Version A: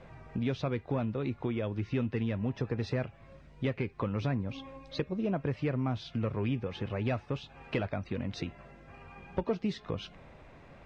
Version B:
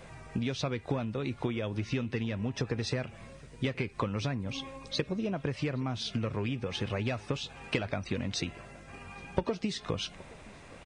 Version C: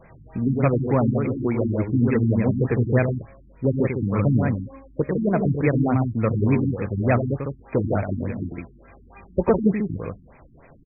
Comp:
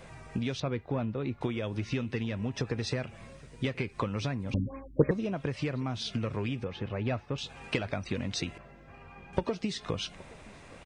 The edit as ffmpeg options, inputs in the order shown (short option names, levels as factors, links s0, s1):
-filter_complex "[0:a]asplit=3[s0][s1][s2];[1:a]asplit=5[s3][s4][s5][s6][s7];[s3]atrim=end=0.602[s8];[s0]atrim=start=0.598:end=1.412[s9];[s4]atrim=start=1.408:end=4.542[s10];[2:a]atrim=start=4.538:end=5.112[s11];[s5]atrim=start=5.108:end=6.642[s12];[s1]atrim=start=6.638:end=7.382[s13];[s6]atrim=start=7.378:end=8.582[s14];[s2]atrim=start=8.578:end=9.332[s15];[s7]atrim=start=9.328[s16];[s8][s9]acrossfade=d=0.004:c1=hsin:c2=hsin[s17];[s17][s10]acrossfade=d=0.004:c1=hsin:c2=hsin[s18];[s18][s11]acrossfade=d=0.004:c1=hsin:c2=hsin[s19];[s19][s12]acrossfade=d=0.004:c1=hsin:c2=hsin[s20];[s20][s13]acrossfade=d=0.004:c1=hsin:c2=hsin[s21];[s21][s14]acrossfade=d=0.004:c1=hsin:c2=hsin[s22];[s22][s15]acrossfade=d=0.004:c1=hsin:c2=hsin[s23];[s23][s16]acrossfade=d=0.004:c1=hsin:c2=hsin"